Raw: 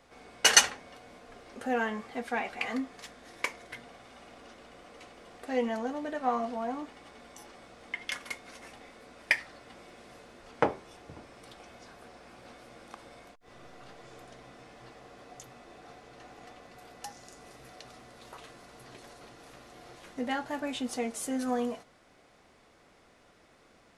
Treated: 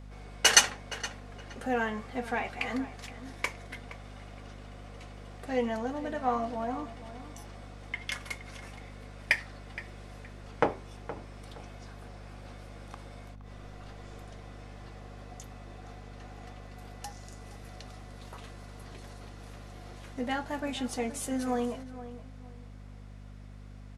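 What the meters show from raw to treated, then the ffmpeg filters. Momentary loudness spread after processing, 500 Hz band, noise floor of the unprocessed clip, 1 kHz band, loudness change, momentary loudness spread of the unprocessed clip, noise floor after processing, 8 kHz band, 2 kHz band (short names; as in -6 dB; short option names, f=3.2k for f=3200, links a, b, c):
17 LU, 0.0 dB, -61 dBFS, 0.0 dB, -1.0 dB, 20 LU, -47 dBFS, 0.0 dB, 0.0 dB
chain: -filter_complex "[0:a]aeval=exprs='val(0)+0.00562*(sin(2*PI*50*n/s)+sin(2*PI*2*50*n/s)/2+sin(2*PI*3*50*n/s)/3+sin(2*PI*4*50*n/s)/4+sin(2*PI*5*50*n/s)/5)':c=same,asplit=2[a][b];[b]adelay=469,lowpass=f=2.9k:p=1,volume=-14dB,asplit=2[c][d];[d]adelay=469,lowpass=f=2.9k:p=1,volume=0.27,asplit=2[e][f];[f]adelay=469,lowpass=f=2.9k:p=1,volume=0.27[g];[c][e][g]amix=inputs=3:normalize=0[h];[a][h]amix=inputs=2:normalize=0"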